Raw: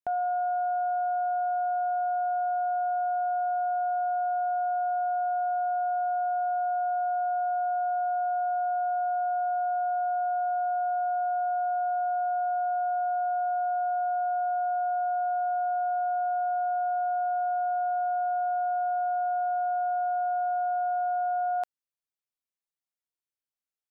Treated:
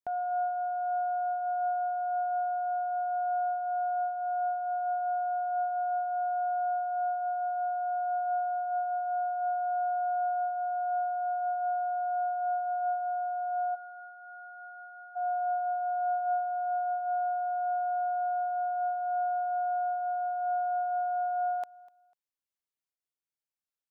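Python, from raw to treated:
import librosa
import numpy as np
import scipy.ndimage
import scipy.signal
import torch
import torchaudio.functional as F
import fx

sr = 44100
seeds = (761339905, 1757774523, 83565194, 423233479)

y = fx.ellip_highpass(x, sr, hz=920.0, order=4, stop_db=40, at=(13.74, 15.15), fade=0.02)
y = fx.echo_feedback(y, sr, ms=248, feedback_pct=32, wet_db=-24.0)
y = fx.am_noise(y, sr, seeds[0], hz=5.7, depth_pct=60)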